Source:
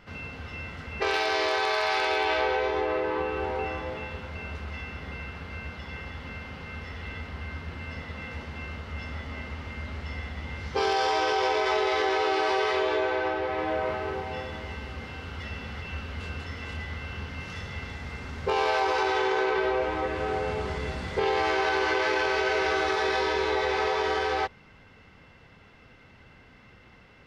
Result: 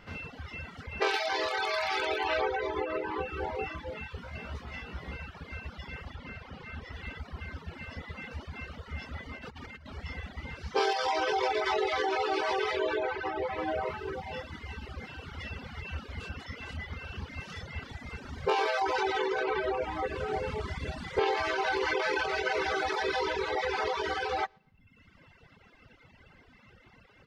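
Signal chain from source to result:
repeating echo 117 ms, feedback 31%, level −12 dB
reverb reduction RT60 1.2 s
0:06.15–0:06.93: high-shelf EQ 7,000 Hz −7.5 dB
reverb reduction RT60 0.76 s
0:04.16–0:05.17: double-tracking delay 17 ms −3.5 dB
0:09.37–0:09.86: compressor whose output falls as the input rises −47 dBFS, ratio −1

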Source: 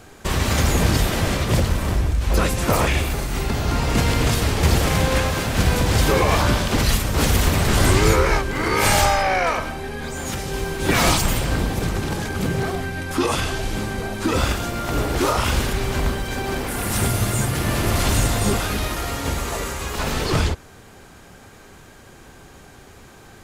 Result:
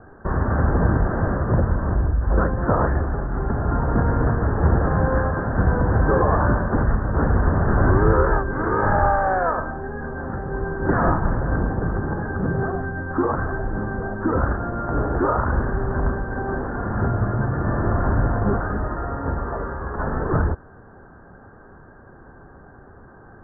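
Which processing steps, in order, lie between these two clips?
Butterworth low-pass 1,700 Hz 96 dB per octave

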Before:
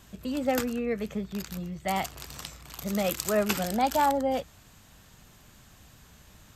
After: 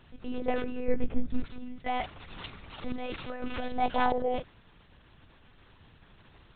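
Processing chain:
0:02.28–0:03.68: compressor whose output falls as the input rises −31 dBFS, ratio −1
one-pitch LPC vocoder at 8 kHz 250 Hz
0:00.88–0:01.46: spectral tilt −2.5 dB per octave
level −2 dB

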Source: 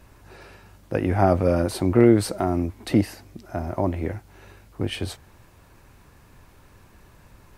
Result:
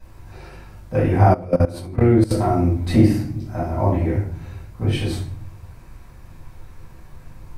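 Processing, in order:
low-shelf EQ 98 Hz +4.5 dB
convolution reverb RT60 0.55 s, pre-delay 3 ms, DRR −9.5 dB
0:01.34–0:02.31: output level in coarse steps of 19 dB
level −13 dB

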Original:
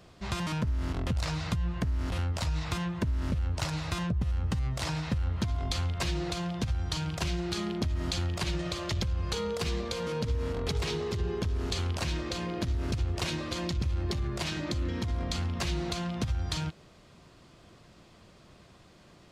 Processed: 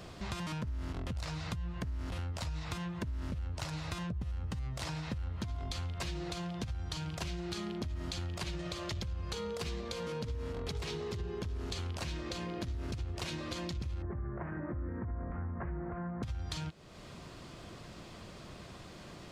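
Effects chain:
0:14.02–0:16.23: Butterworth low-pass 1,800 Hz 48 dB per octave
downward compressor 2.5 to 1, threshold −50 dBFS, peak gain reduction 16.5 dB
level +7 dB

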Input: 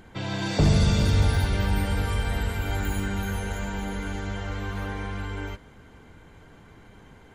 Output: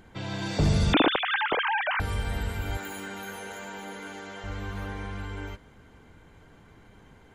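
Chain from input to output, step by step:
0:00.93–0:02.00: three sine waves on the formant tracks
0:02.77–0:04.44: high-pass filter 310 Hz 12 dB per octave
level −3.5 dB

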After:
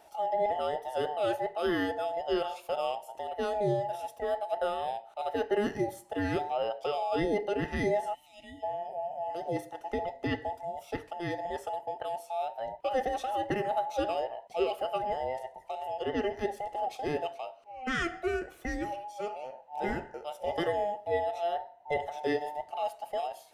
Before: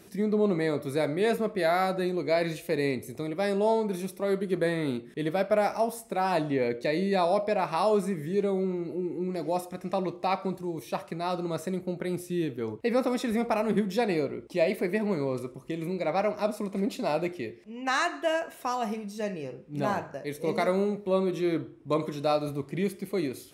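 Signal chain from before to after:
frequency inversion band by band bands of 1,000 Hz
gain on a spectral selection 0:08.14–0:08.63, 330–1,800 Hz −25 dB
high-shelf EQ 4,600 Hz −6.5 dB
level −4 dB

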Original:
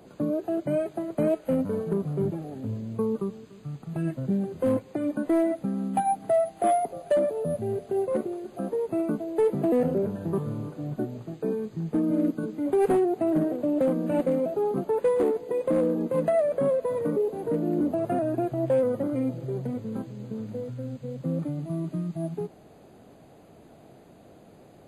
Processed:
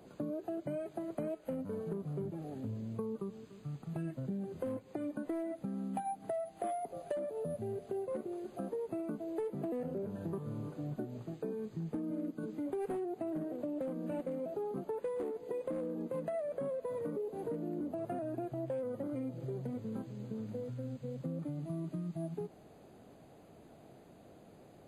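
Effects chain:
downward compressor, threshold −30 dBFS, peak gain reduction 10.5 dB
level −5.5 dB

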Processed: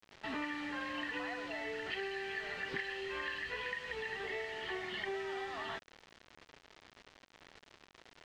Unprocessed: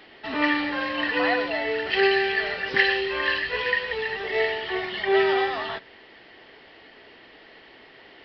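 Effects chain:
downward compressor 16 to 1, threshold −30 dBFS, peak gain reduction 16.5 dB
dynamic equaliser 550 Hz, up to −5 dB, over −48 dBFS, Q 1.6
bit reduction 7 bits
high-frequency loss of the air 140 metres
level −4.5 dB

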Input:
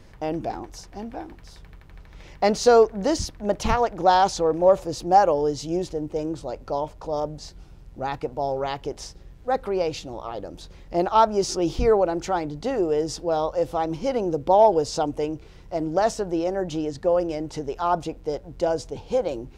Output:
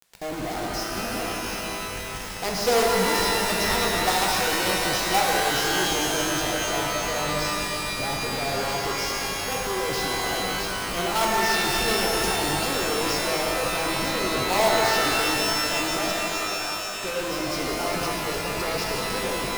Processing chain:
parametric band 5,200 Hz +11 dB 0.3 octaves
notch filter 570 Hz, Q 12
log-companded quantiser 2 bits
gain into a clipping stage and back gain 9.5 dB
0:16.11–0:17.01: formant filter a
reverb with rising layers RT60 3.8 s, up +12 semitones, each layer −2 dB, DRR −2 dB
level −6.5 dB

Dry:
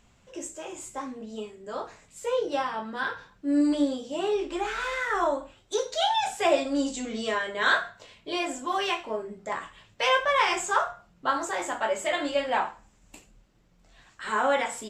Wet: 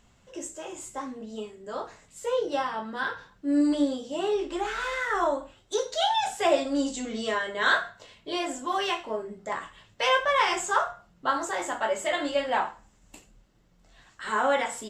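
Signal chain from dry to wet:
notch filter 2,400 Hz, Q 15

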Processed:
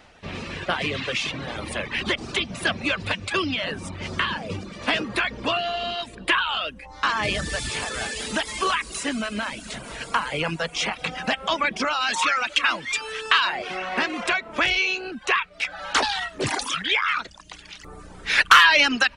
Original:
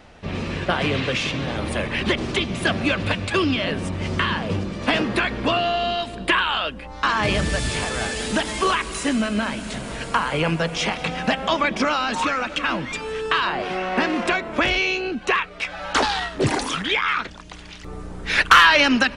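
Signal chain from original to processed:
reverb reduction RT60 0.62 s
tilt shelving filter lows −3.5 dB, about 700 Hz, from 0:12.00 lows −10 dB, from 0:13.58 lows −5 dB
level −3.5 dB

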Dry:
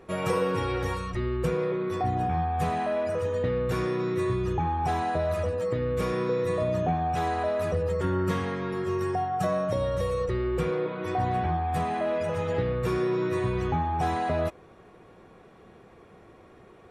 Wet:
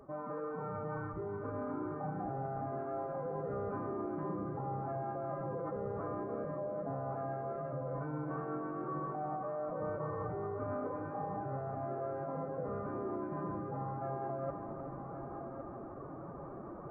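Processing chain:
Butterworth low-pass 1,400 Hz 48 dB per octave
mains-hum notches 60/120/180 Hz
dynamic equaliser 140 Hz, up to −8 dB, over −43 dBFS, Q 0.7
reversed playback
downward compressor 8 to 1, threshold −44 dBFS, peak gain reduction 19.5 dB
reversed playback
phase-vocoder pitch shift with formants kept +8.5 semitones
on a send: echo machine with several playback heads 371 ms, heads first and third, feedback 47%, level −9 dB
on the sum: level +6 dB

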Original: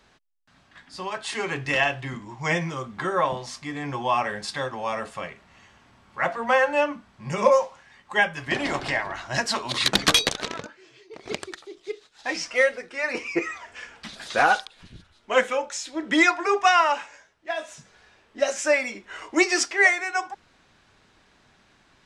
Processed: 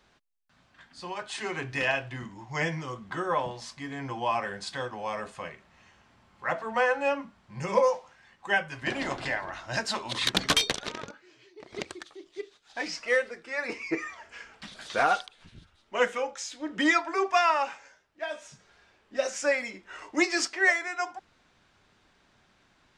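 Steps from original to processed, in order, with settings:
wrong playback speed 25 fps video run at 24 fps
level −5 dB

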